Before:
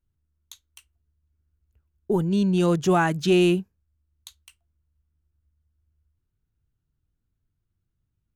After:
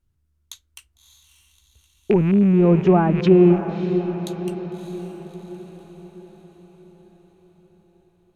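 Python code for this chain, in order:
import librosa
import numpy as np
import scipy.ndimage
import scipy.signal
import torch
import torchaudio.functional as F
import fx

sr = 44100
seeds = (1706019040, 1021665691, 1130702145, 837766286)

y = fx.rattle_buzz(x, sr, strikes_db=-34.0, level_db=-18.0)
y = fx.env_lowpass_down(y, sr, base_hz=730.0, full_db=-18.5)
y = fx.echo_diffused(y, sr, ms=614, feedback_pct=53, wet_db=-9.5)
y = F.gain(torch.from_numpy(y), 6.0).numpy()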